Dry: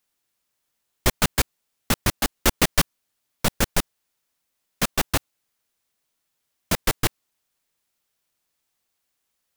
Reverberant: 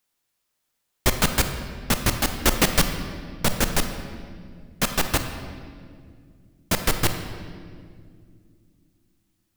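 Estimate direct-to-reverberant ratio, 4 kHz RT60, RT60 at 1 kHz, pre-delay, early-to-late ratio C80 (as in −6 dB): 6.5 dB, 1.5 s, 1.8 s, 27 ms, 8.5 dB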